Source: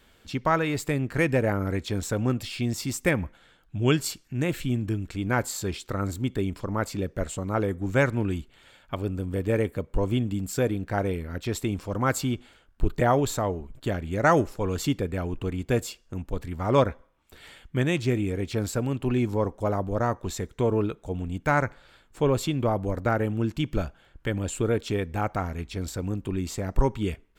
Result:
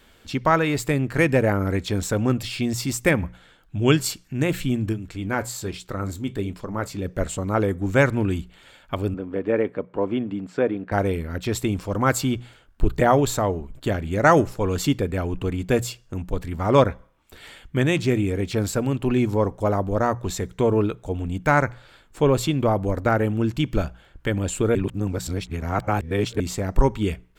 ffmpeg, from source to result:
ffmpeg -i in.wav -filter_complex "[0:a]asplit=3[link_01][link_02][link_03];[link_01]afade=type=out:start_time=4.92:duration=0.02[link_04];[link_02]flanger=delay=4.7:depth=7.2:regen=-66:speed=1.2:shape=sinusoidal,afade=type=in:start_time=4.92:duration=0.02,afade=type=out:start_time=7.04:duration=0.02[link_05];[link_03]afade=type=in:start_time=7.04:duration=0.02[link_06];[link_04][link_05][link_06]amix=inputs=3:normalize=0,asettb=1/sr,asplit=3[link_07][link_08][link_09];[link_07]atrim=end=9.144[link_10];[link_08]atrim=start=9.14:end=10.92,asetpts=PTS-STARTPTS,afade=type=in:duration=0.004:curve=qsin,afade=type=out:start_time=1.776:duration=0.004:curve=qsin,highpass=230,lowpass=2100[link_11];[link_09]atrim=start=10.916[link_12];[link_10][link_11]acrossfade=duration=0.004:curve1=hsin:curve2=qsin[link_13];[link_13][link_12]acrossfade=duration=0.004:curve1=qsin:curve2=hsin,asplit=3[link_14][link_15][link_16];[link_14]atrim=end=24.752[link_17];[link_15]atrim=start=24.748:end=26.402,asetpts=PTS-STARTPTS,areverse[link_18];[link_16]atrim=start=26.398[link_19];[link_17][link_18]acrossfade=duration=0.004:curve1=hsin:curve2=hsin[link_20];[link_20][link_19]acrossfade=duration=0.004:curve1=hsin:curve2=hsin,bandreject=frequency=60:width_type=h:width=6,bandreject=frequency=120:width_type=h:width=6,bandreject=frequency=180:width_type=h:width=6,volume=4.5dB" out.wav

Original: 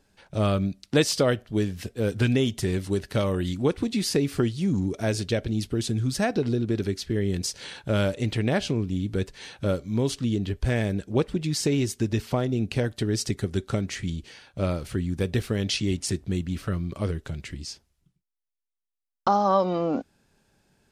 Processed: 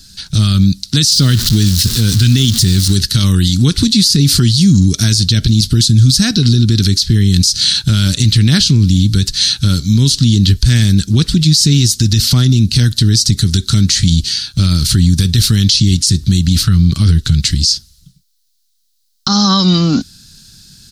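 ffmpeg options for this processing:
ffmpeg -i in.wav -filter_complex "[0:a]asettb=1/sr,asplit=3[link_01][link_02][link_03];[link_01]atrim=end=1.114[link_04];[link_02]atrim=start=1.11:end=2.95,asetpts=PTS-STARTPTS,afade=type=in:duration=0.004:curve=qsin,afade=type=out:start_time=1.836:duration=0.004:curve=qsin,aeval=exprs='val(0)+0.5*0.0188*sgn(val(0))':channel_layout=same[link_05];[link_03]atrim=start=2.946[link_06];[link_04][link_05]acrossfade=duration=0.004:curve1=hsin:curve2=qsin[link_07];[link_07][link_06]acrossfade=duration=0.004:curve1=qsin:curve2=hsin,asettb=1/sr,asplit=3[link_08][link_09][link_10];[link_08]atrim=end=16.634[link_11];[link_09]atrim=start=16.63:end=17.43,asetpts=PTS-STARTPTS,afade=type=in:duration=0.004:curve=qsin,afade=type=out:start_time=0.796:duration=0.004:curve=qsin,bass=frequency=250:gain=1,treble=frequency=4000:gain=-5[link_12];[link_10]atrim=start=17.426[link_13];[link_11][link_12]acrossfade=duration=0.004:curve1=hsin:curve2=qsin[link_14];[link_14][link_13]acrossfade=duration=0.004:curve1=qsin:curve2=hsin,firequalizer=gain_entry='entry(150,0);entry(540,-29);entry(1400,-8);entry(2300,-10);entry(4100,13);entry(7700,6)':delay=0.05:min_phase=1,acrossover=split=380[link_15][link_16];[link_16]acompressor=threshold=-27dB:ratio=2.5[link_17];[link_15][link_17]amix=inputs=2:normalize=0,alimiter=level_in=24.5dB:limit=-1dB:release=50:level=0:latency=1,volume=-1dB" out.wav

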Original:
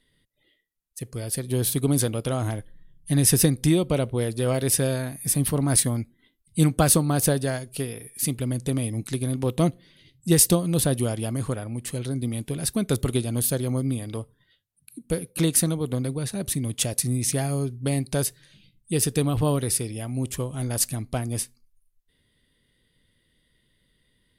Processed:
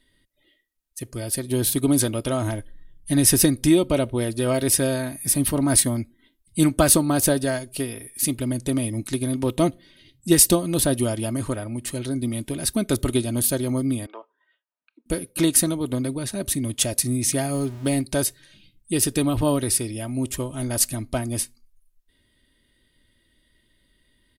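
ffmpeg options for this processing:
ffmpeg -i in.wav -filter_complex "[0:a]asettb=1/sr,asplit=3[link_01][link_02][link_03];[link_01]atrim=end=14.064[link_04];[link_02]atrim=start=14.06:end=15.06,asetpts=PTS-STARTPTS,afade=type=in:duration=0.004:curve=qsin,afade=type=out:start_time=0.996:duration=0.004:curve=qsin,highpass=frequency=480:width=0.5412,highpass=frequency=480:width=1.3066,equalizer=frequency=530:width_type=q:width=4:gain=-6,equalizer=frequency=990:width_type=q:width=4:gain=3,equalizer=frequency=2100:width_type=q:width=4:gain=-7,lowpass=frequency=2400:width=0.5412,lowpass=frequency=2400:width=1.3066[link_05];[link_03]atrim=start=15.056[link_06];[link_04][link_05]acrossfade=duration=0.004:curve1=hsin:curve2=qsin[link_07];[link_07][link_06]acrossfade=duration=0.004:curve1=qsin:curve2=hsin,asettb=1/sr,asplit=3[link_08][link_09][link_10];[link_08]atrim=end=17.544[link_11];[link_09]atrim=start=17.54:end=18.01,asetpts=PTS-STARTPTS,afade=type=in:duration=0.004:curve=qsin,afade=type=out:start_time=0.466:duration=0.004:curve=qsin,aeval=exprs='val(0)+0.5*0.0112*sgn(val(0))':channel_layout=same[link_12];[link_10]atrim=start=18.006[link_13];[link_11][link_12]acrossfade=duration=0.004:curve1=hsin:curve2=qsin[link_14];[link_14][link_13]acrossfade=duration=0.004:curve1=qsin:curve2=hsin,aecho=1:1:3.2:0.51,volume=2dB" out.wav

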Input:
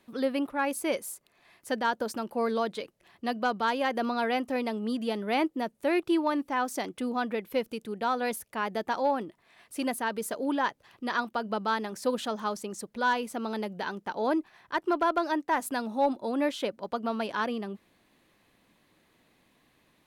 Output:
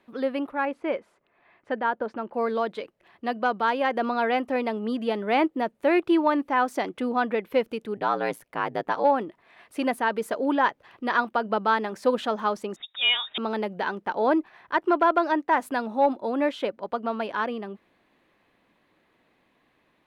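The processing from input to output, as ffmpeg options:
ffmpeg -i in.wav -filter_complex "[0:a]asettb=1/sr,asplit=3[link_01][link_02][link_03];[link_01]atrim=end=0.654[link_04];[link_02]atrim=start=0.65:end=2.34,asetpts=PTS-STARTPTS,afade=type=in:duration=0.004:curve=qsin,afade=type=out:start_time=1.686:duration=0.004:curve=qsin,lowpass=2500[link_05];[link_03]atrim=start=2.336[link_06];[link_04][link_05]acrossfade=duration=0.004:curve1=hsin:curve2=qsin[link_07];[link_07][link_06]acrossfade=duration=0.004:curve1=qsin:curve2=hsin,asplit=3[link_08][link_09][link_10];[link_08]afade=type=out:start_time=7.96:duration=0.02[link_11];[link_09]aeval=exprs='val(0)*sin(2*PI*56*n/s)':channel_layout=same,afade=type=in:start_time=7.96:duration=0.02,afade=type=out:start_time=9.03:duration=0.02[link_12];[link_10]afade=type=in:start_time=9.03:duration=0.02[link_13];[link_11][link_12][link_13]amix=inputs=3:normalize=0,asettb=1/sr,asplit=3[link_14][link_15][link_16];[link_14]atrim=end=12.764[link_17];[link_15]atrim=start=12.76:end=13.38,asetpts=PTS-STARTPTS,afade=type=in:duration=0.004:curve=qsin,afade=type=out:start_time=0.616:duration=0.004:curve=qsin,lowpass=frequency=3300:width_type=q:width=0.5098,lowpass=frequency=3300:width_type=q:width=0.6013,lowpass=frequency=3300:width_type=q:width=0.9,lowpass=frequency=3300:width_type=q:width=2.563,afreqshift=-3900[link_18];[link_16]atrim=start=13.376[link_19];[link_17][link_18]acrossfade=duration=0.004:curve1=hsin:curve2=qsin[link_20];[link_20][link_19]acrossfade=duration=0.004:curve1=qsin:curve2=hsin,bass=frequency=250:gain=-6,treble=frequency=4000:gain=-14,dynaudnorm=framelen=490:gausssize=17:maxgain=4dB,volume=2.5dB" out.wav

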